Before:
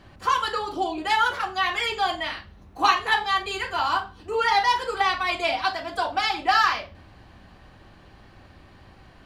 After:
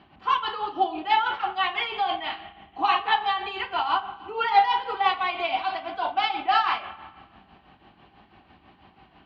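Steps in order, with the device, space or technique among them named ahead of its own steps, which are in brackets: combo amplifier with spring reverb and tremolo (spring tank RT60 1.4 s, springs 46/56 ms, chirp 60 ms, DRR 11 dB; tremolo 6.1 Hz, depth 59%; cabinet simulation 86–3600 Hz, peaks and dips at 87 Hz -7 dB, 120 Hz -9 dB, 530 Hz -9 dB, 790 Hz +6 dB, 1.7 kHz -5 dB, 2.9 kHz +4 dB)

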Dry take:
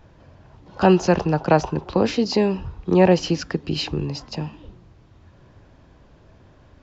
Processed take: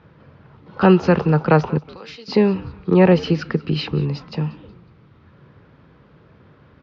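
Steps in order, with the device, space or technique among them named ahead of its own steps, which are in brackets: 1.78–2.28 s: differentiator; frequency-shifting delay pedal into a guitar cabinet (frequency-shifting echo 184 ms, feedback 41%, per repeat -110 Hz, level -21 dB; cabinet simulation 81–4400 Hz, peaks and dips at 150 Hz +7 dB, 210 Hz +4 dB, 460 Hz +6 dB, 670 Hz -5 dB, 1.3 kHz +8 dB, 2.1 kHz +4 dB)

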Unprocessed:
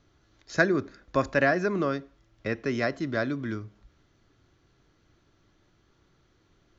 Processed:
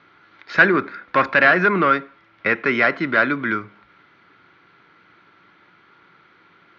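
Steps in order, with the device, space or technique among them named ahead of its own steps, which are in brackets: overdrive pedal into a guitar cabinet (overdrive pedal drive 20 dB, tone 3 kHz, clips at -7 dBFS; cabinet simulation 100–4200 Hz, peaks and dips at 180 Hz +7 dB, 640 Hz -4 dB, 940 Hz +4 dB, 1.4 kHz +9 dB, 2.2 kHz +9 dB)

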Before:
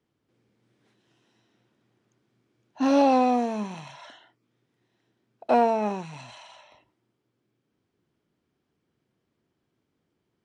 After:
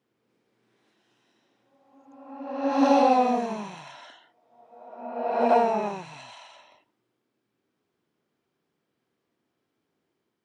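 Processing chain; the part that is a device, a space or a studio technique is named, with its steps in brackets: ghost voice (reverse; reverberation RT60 1.3 s, pre-delay 66 ms, DRR -0.5 dB; reverse; high-pass 310 Hz 6 dB/octave); trim -1.5 dB

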